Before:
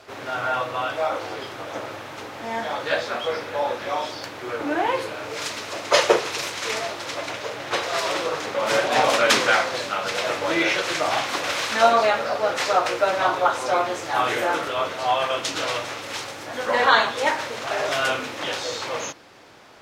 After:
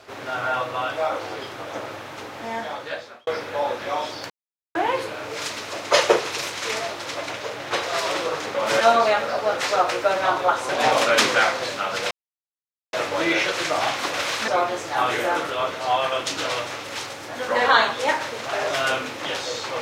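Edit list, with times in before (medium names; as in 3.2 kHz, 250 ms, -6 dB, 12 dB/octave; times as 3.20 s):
2.45–3.27 s: fade out linear
4.30–4.75 s: mute
10.23 s: insert silence 0.82 s
11.78–13.66 s: move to 8.81 s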